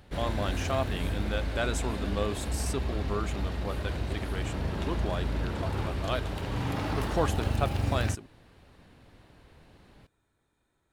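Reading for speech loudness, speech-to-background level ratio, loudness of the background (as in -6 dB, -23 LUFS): -35.5 LUFS, -2.5 dB, -33.0 LUFS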